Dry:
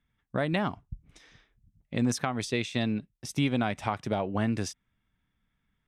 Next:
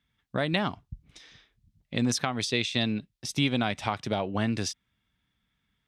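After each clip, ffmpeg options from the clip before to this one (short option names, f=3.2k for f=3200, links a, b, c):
-af "highpass=42,equalizer=f=4k:w=1:g=8.5"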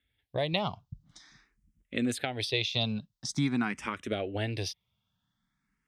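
-filter_complex "[0:a]asplit=2[a][b];[b]afreqshift=0.47[c];[a][c]amix=inputs=2:normalize=1"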